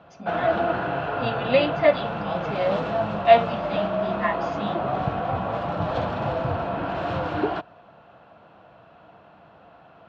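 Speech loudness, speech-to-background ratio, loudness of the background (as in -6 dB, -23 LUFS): -24.5 LUFS, 2.5 dB, -27.0 LUFS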